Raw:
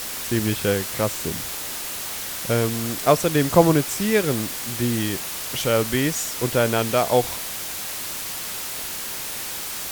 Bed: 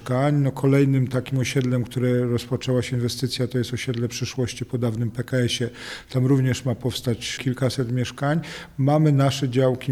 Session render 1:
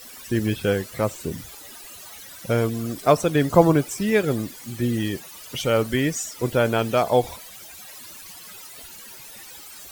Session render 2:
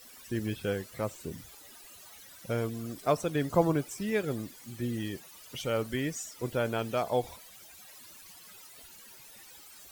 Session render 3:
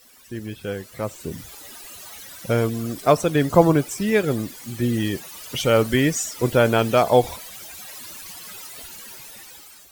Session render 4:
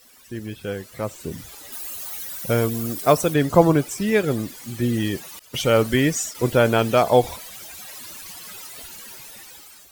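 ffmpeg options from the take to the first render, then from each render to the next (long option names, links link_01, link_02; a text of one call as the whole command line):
ffmpeg -i in.wav -af "afftdn=noise_reduction=16:noise_floor=-31" out.wav
ffmpeg -i in.wav -af "volume=-10dB" out.wav
ffmpeg -i in.wav -af "dynaudnorm=framelen=540:gausssize=5:maxgain=14dB" out.wav
ffmpeg -i in.wav -filter_complex "[0:a]asettb=1/sr,asplit=3[link_01][link_02][link_03];[link_01]atrim=end=1.724[link_04];[link_02]atrim=start=1.72:end=3.34,asetpts=PTS-STARTPTS,afade=type=in:duration=0.004:curve=qsin,afade=type=out:start_time=1.616:duration=0.004:curve=qsin,highshelf=frequency=10000:gain=12[link_05];[link_03]atrim=start=3.336[link_06];[link_04][link_05]acrossfade=duration=0.004:curve1=hsin:curve2=qsin[link_07];[link_07][link_06]acrossfade=duration=0.004:curve1=qsin:curve2=hsin,asettb=1/sr,asplit=3[link_08][link_09][link_10];[link_08]atrim=end=5.394[link_11];[link_09]atrim=start=5.39:end=6.35,asetpts=PTS-STARTPTS,afade=type=in:duration=0.004:curve=qsin,afade=type=out:start_time=0.956:duration=0.004:curve=qsin,agate=range=-33dB:threshold=-31dB:ratio=3:release=100:detection=peak[link_12];[link_10]atrim=start=6.346[link_13];[link_11][link_12]acrossfade=duration=0.004:curve1=hsin:curve2=qsin[link_14];[link_14][link_13]acrossfade=duration=0.004:curve1=qsin:curve2=hsin" out.wav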